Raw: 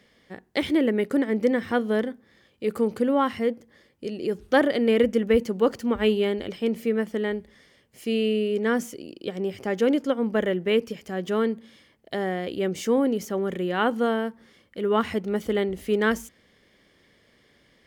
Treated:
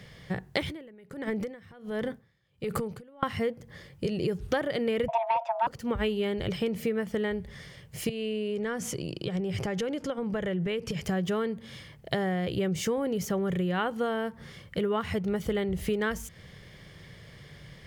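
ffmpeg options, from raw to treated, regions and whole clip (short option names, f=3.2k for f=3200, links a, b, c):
-filter_complex "[0:a]asettb=1/sr,asplit=3[a][b][c];[a]atrim=end=0.624[d];[b]atrim=start=0.62:end=3.23,asetpts=PTS-STARTPTS,afade=t=in:d=0.004:c=qsin,afade=t=out:st=2.606:d=0.004:c=qsin,acompressor=threshold=-29dB:ratio=12:attack=3.2:release=140:knee=1:detection=peak,aeval=exprs='val(0)*pow(10,-26*(0.5-0.5*cos(2*PI*1.4*n/s))/20)':c=same[e];[c]atrim=start=3.226[f];[d][e]acrossfade=d=0.004:c1=hsin:c2=qsin[g];[g][f]acrossfade=d=0.004:c1=qsin:c2=hsin,asettb=1/sr,asplit=3[h][i][j];[h]atrim=end=5.084[k];[i]atrim=start=5.08:end=5.67,asetpts=PTS-STARTPTS,afade=t=in:d=0.004:c=qsin,afade=t=out:st=0.586:d=0.004:c=qsin,afreqshift=460,aeval=exprs='0.376*sin(PI/2*1.41*val(0)/0.376)':c=same,highpass=110,lowpass=2.5k[l];[j]atrim=start=5.666[m];[k][l]acrossfade=d=0.004:c1=hsin:c2=qsin[n];[n][m]acrossfade=d=0.004:c1=qsin:c2=hsin,asettb=1/sr,asplit=3[o][p][q];[o]atrim=end=8.094[r];[p]atrim=start=8.09:end=11.03,asetpts=PTS-STARTPTS,afade=t=in:d=0.004:c=qsin,afade=t=out:st=2.936:d=0.004:c=qsin,lowpass=11k,acompressor=threshold=-37dB:ratio=3:attack=3.2:release=140:knee=1:detection=peak[s];[q]atrim=start=11.026[t];[r][s]acrossfade=d=0.004:c1=hsin:c2=qsin[u];[u][t]acrossfade=d=0.004:c1=qsin:c2=hsin,lowshelf=f=190:t=q:w=3:g=8,acompressor=threshold=-35dB:ratio=6,volume=8.5dB"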